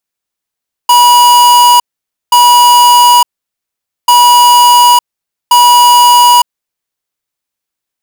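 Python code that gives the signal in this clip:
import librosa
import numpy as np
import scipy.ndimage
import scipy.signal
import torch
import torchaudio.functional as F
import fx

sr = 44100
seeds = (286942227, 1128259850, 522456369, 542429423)

y = fx.beep_pattern(sr, wave='square', hz=970.0, on_s=0.91, off_s=0.52, beeps=2, pause_s=0.85, groups=2, level_db=-4.0)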